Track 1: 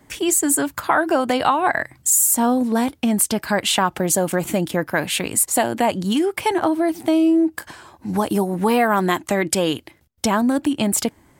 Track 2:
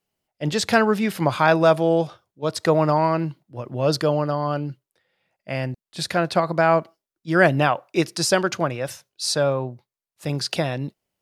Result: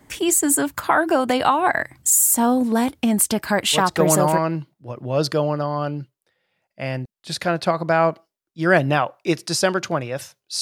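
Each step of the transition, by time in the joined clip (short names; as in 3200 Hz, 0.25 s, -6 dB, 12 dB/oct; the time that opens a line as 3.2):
track 1
4.05 switch to track 2 from 2.74 s, crossfade 0.66 s logarithmic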